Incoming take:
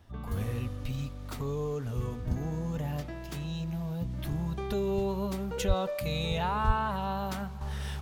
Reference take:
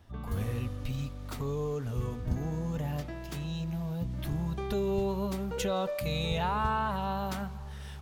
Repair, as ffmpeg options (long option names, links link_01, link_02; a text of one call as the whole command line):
ffmpeg -i in.wav -filter_complex "[0:a]asplit=3[link_01][link_02][link_03];[link_01]afade=type=out:start_time=5.67:duration=0.02[link_04];[link_02]highpass=frequency=140:width=0.5412,highpass=frequency=140:width=1.3066,afade=type=in:start_time=5.67:duration=0.02,afade=type=out:start_time=5.79:duration=0.02[link_05];[link_03]afade=type=in:start_time=5.79:duration=0.02[link_06];[link_04][link_05][link_06]amix=inputs=3:normalize=0,asplit=3[link_07][link_08][link_09];[link_07]afade=type=out:start_time=6.66:duration=0.02[link_10];[link_08]highpass=frequency=140:width=0.5412,highpass=frequency=140:width=1.3066,afade=type=in:start_time=6.66:duration=0.02,afade=type=out:start_time=6.78:duration=0.02[link_11];[link_09]afade=type=in:start_time=6.78:duration=0.02[link_12];[link_10][link_11][link_12]amix=inputs=3:normalize=0,asetnsamples=nb_out_samples=441:pad=0,asendcmd='7.61 volume volume -7dB',volume=0dB" out.wav